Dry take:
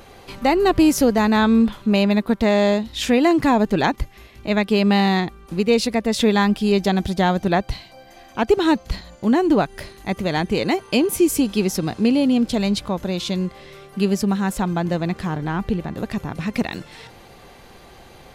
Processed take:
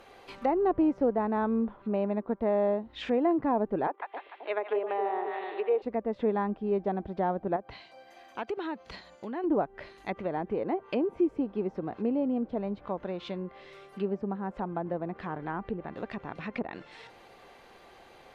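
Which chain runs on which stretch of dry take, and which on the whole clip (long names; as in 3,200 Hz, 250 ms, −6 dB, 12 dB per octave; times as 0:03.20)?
0:03.87–0:05.82: elliptic band-pass filter 380–3,400 Hz + echo with a time of its own for lows and highs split 720 Hz, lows 265 ms, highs 148 ms, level −5.5 dB
0:07.56–0:09.44: high-pass filter 130 Hz 6 dB per octave + downward compressor 3 to 1, threshold −24 dBFS
whole clip: treble cut that deepens with the level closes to 890 Hz, closed at −17.5 dBFS; bass and treble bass −12 dB, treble −8 dB; level −6.5 dB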